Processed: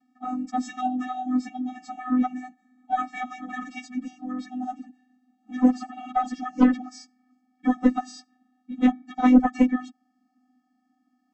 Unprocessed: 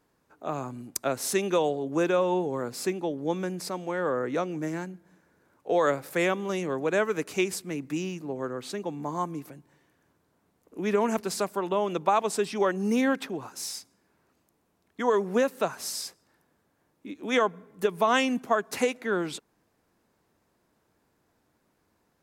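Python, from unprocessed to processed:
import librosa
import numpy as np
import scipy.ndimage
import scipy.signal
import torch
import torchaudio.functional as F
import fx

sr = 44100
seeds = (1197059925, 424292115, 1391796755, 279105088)

y = fx.vocoder(x, sr, bands=32, carrier='square', carrier_hz=252.0)
y = fx.cheby_harmonics(y, sr, harmonics=(4, 5, 6, 8), levels_db=(-11, -21, -21, -42), full_scale_db=-8.0)
y = fx.stretch_vocoder_free(y, sr, factor=0.51)
y = F.gain(torch.from_numpy(y), 5.5).numpy()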